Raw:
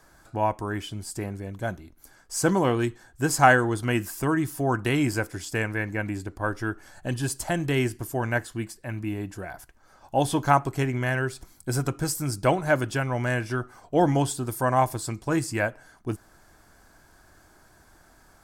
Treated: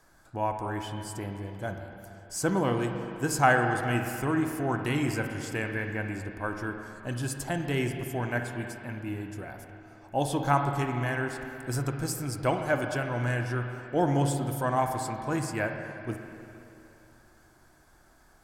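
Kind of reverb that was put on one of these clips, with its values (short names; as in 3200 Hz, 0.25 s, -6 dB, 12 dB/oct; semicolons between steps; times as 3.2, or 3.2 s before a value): spring tank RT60 2.9 s, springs 41/50/57 ms, chirp 20 ms, DRR 4.5 dB; gain -5 dB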